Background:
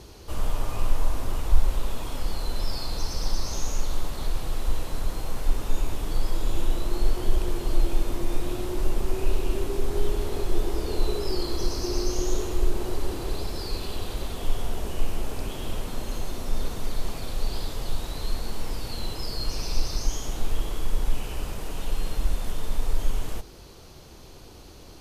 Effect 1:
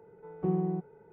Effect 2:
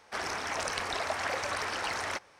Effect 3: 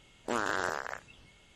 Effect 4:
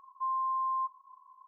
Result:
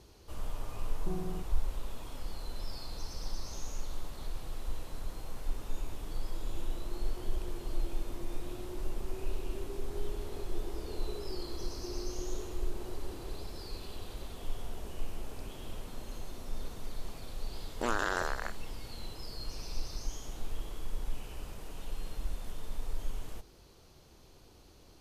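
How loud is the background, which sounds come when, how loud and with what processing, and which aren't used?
background −11.5 dB
0:00.62: mix in 1 −10 dB + all-pass dispersion highs, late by 65 ms, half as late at 1,000 Hz
0:17.53: mix in 3 −0.5 dB
not used: 2, 4

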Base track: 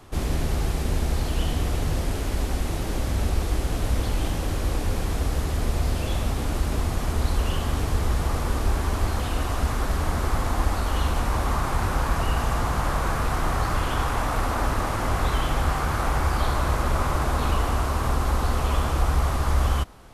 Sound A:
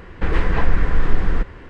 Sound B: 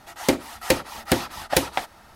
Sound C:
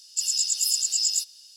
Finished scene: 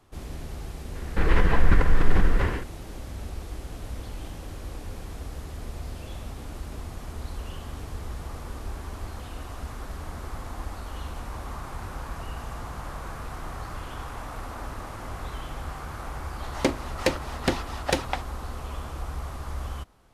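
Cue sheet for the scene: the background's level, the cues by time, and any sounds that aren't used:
base track −12 dB
0:00.95: mix in A −3 dB + level that may fall only so fast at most 65 dB per second
0:16.36: mix in B −3.5 dB + high-frequency loss of the air 55 metres
not used: C

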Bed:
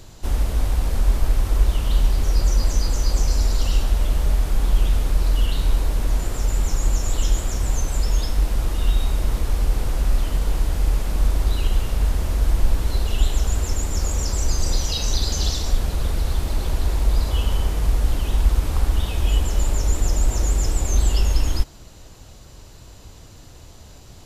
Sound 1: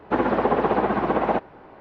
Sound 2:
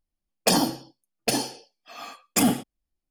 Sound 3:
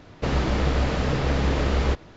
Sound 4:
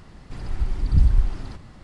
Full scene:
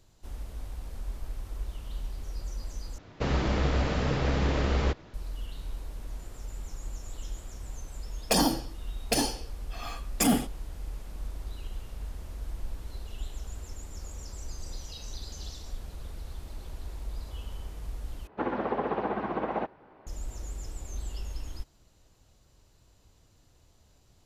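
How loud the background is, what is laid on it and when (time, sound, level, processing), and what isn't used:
bed −18.5 dB
0:02.98: overwrite with 3 −4 dB
0:07.84: mix in 2 −1 dB + brickwall limiter −12.5 dBFS
0:18.27: overwrite with 1 −9.5 dB
not used: 4

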